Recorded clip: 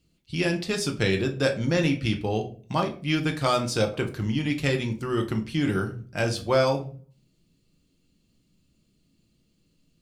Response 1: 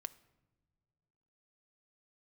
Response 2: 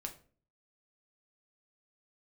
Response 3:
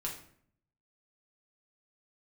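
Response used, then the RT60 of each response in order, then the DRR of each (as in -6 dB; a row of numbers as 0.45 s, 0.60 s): 2; no single decay rate, 0.45 s, 0.60 s; 10.0 dB, 3.0 dB, -3.0 dB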